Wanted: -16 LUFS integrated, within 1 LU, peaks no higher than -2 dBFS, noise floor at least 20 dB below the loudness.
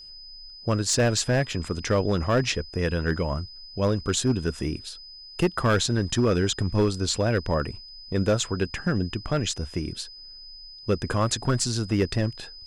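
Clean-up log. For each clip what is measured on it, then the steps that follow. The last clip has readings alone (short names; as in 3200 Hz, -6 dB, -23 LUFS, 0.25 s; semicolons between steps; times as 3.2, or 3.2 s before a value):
clipped 1.2%; flat tops at -15.5 dBFS; steady tone 5000 Hz; tone level -42 dBFS; loudness -25.5 LUFS; peak -15.5 dBFS; loudness target -16.0 LUFS
-> clip repair -15.5 dBFS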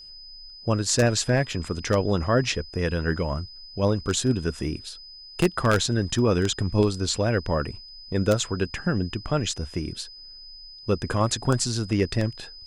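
clipped 0.0%; steady tone 5000 Hz; tone level -42 dBFS
-> notch 5000 Hz, Q 30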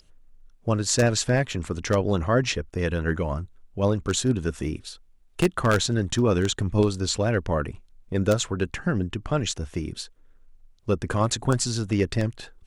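steady tone none; loudness -25.0 LUFS; peak -6.5 dBFS; loudness target -16.0 LUFS
-> gain +9 dB; limiter -2 dBFS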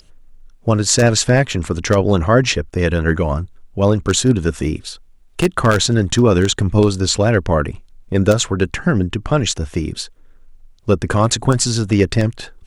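loudness -16.5 LUFS; peak -2.0 dBFS; noise floor -47 dBFS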